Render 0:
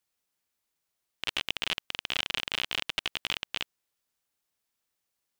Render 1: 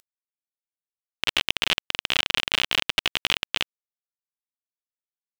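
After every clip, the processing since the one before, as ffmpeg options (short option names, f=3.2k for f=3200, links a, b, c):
-filter_complex "[0:a]asplit=2[a][b];[b]acompressor=mode=upward:threshold=-35dB:ratio=2.5,volume=-2.5dB[c];[a][c]amix=inputs=2:normalize=0,acrusher=bits=6:mix=0:aa=0.000001,volume=3dB"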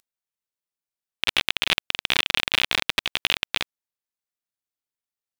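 -af "aeval=exprs='val(0)*sin(2*PI*360*n/s)':c=same,acontrast=30"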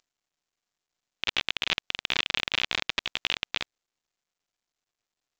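-af "volume=-5.5dB" -ar 16000 -c:a pcm_mulaw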